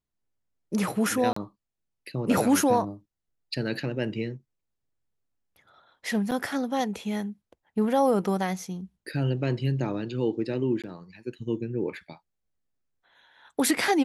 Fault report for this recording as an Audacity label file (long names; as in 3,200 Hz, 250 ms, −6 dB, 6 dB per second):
1.330000	1.360000	drop-out 34 ms
6.310000	6.320000	drop-out 6.6 ms
10.820000	10.840000	drop-out 17 ms